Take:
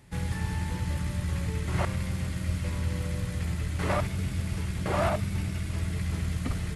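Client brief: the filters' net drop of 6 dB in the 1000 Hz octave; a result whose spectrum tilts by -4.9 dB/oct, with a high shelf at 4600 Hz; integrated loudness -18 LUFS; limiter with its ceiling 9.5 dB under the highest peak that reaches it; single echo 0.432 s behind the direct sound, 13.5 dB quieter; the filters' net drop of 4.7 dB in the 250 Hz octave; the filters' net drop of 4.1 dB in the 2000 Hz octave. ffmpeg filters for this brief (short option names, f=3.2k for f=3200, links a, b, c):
-af "equalizer=f=250:t=o:g=-8,equalizer=f=1k:t=o:g=-7,equalizer=f=2k:t=o:g=-4.5,highshelf=f=4.6k:g=8.5,alimiter=level_in=2dB:limit=-24dB:level=0:latency=1,volume=-2dB,aecho=1:1:432:0.211,volume=17dB"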